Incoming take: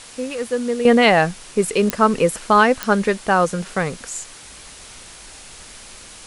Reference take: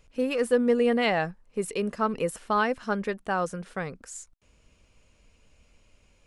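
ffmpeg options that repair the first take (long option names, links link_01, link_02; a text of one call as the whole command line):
ffmpeg -i in.wav -af "adeclick=threshold=4,afwtdn=0.013,asetnsamples=nb_out_samples=441:pad=0,asendcmd='0.85 volume volume -11dB',volume=0dB" out.wav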